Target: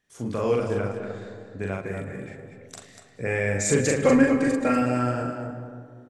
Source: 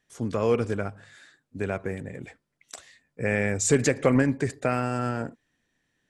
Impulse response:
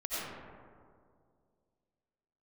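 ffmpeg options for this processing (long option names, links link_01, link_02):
-filter_complex "[0:a]asettb=1/sr,asplit=3[link_01][link_02][link_03];[link_01]atrim=end=0.764[link_04];[link_02]atrim=start=0.76:end=1.62,asetpts=PTS-STARTPTS,afade=type=in:duration=0.004:curve=qsin,afade=type=out:start_time=0.856:duration=0.004:curve=qsin,lowpass=6900[link_05];[link_03]atrim=start=1.616[link_06];[link_04][link_05]acrossfade=duration=0.004:curve1=hsin:curve2=qsin[link_07];[link_07][link_06]acrossfade=duration=0.004:curve1=qsin:curve2=hsin,asettb=1/sr,asplit=3[link_08][link_09][link_10];[link_08]atrim=end=3.974[link_11];[link_09]atrim=start=3.97:end=4.82,asetpts=PTS-STARTPTS,afade=type=in:duration=0.004:curve=qsin,afade=type=out:start_time=0.846:duration=0.004:curve=qsin,aecho=1:1:3.7:0.9,atrim=end_sample=37485[link_12];[link_10]atrim=start=4.816[link_13];[link_11][link_12]acrossfade=duration=0.004:curve1=hsin:curve2=qsin[link_14];[link_14][link_13]acrossfade=duration=0.004:curve1=qsin:curve2=hsin,aecho=1:1:40.82|242:0.794|0.398,asplit=2[link_15][link_16];[1:a]atrim=start_sample=2205,adelay=109[link_17];[link_16][link_17]afir=irnorm=-1:irlink=0,volume=-13.5dB[link_18];[link_15][link_18]amix=inputs=2:normalize=0,volume=-2.5dB"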